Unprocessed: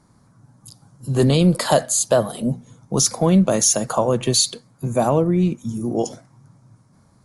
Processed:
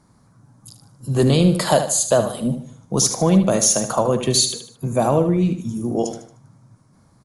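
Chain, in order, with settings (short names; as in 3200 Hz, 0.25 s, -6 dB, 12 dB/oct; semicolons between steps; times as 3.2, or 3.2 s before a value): feedback echo 76 ms, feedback 39%, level -9.5 dB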